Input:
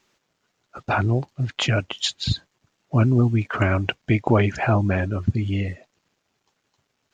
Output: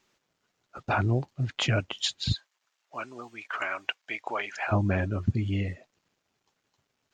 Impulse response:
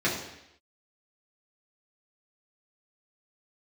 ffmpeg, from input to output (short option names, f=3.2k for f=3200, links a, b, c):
-filter_complex "[0:a]asplit=3[a][b][c];[a]afade=t=out:st=2.34:d=0.02[d];[b]highpass=910,afade=t=in:st=2.34:d=0.02,afade=t=out:st=4.71:d=0.02[e];[c]afade=t=in:st=4.71:d=0.02[f];[d][e][f]amix=inputs=3:normalize=0,volume=-4.5dB"